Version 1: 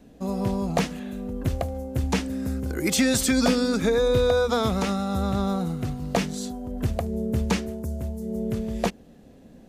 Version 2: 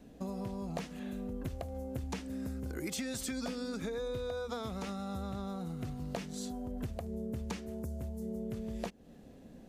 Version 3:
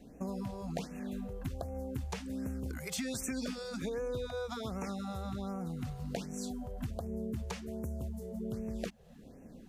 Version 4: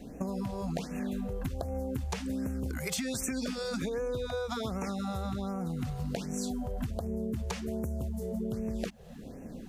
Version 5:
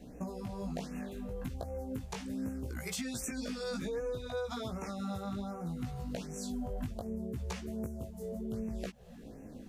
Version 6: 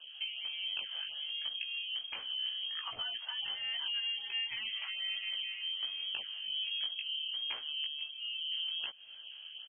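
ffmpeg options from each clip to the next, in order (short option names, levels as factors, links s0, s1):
-af "acompressor=threshold=0.0251:ratio=6,volume=0.631"
-af "afftfilt=real='re*(1-between(b*sr/1024,250*pow(4000/250,0.5+0.5*sin(2*PI*1.3*pts/sr))/1.41,250*pow(4000/250,0.5+0.5*sin(2*PI*1.3*pts/sr))*1.41))':imag='im*(1-between(b*sr/1024,250*pow(4000/250,0.5+0.5*sin(2*PI*1.3*pts/sr))/1.41,250*pow(4000/250,0.5+0.5*sin(2*PI*1.3*pts/sr))*1.41))':win_size=1024:overlap=0.75,volume=1.12"
-af "acompressor=threshold=0.0112:ratio=6,volume=2.66"
-af "flanger=delay=16:depth=4.2:speed=0.67,volume=0.841"
-af "aecho=1:1:482:0.0631,lowpass=f=2800:t=q:w=0.5098,lowpass=f=2800:t=q:w=0.6013,lowpass=f=2800:t=q:w=0.9,lowpass=f=2800:t=q:w=2.563,afreqshift=-3300"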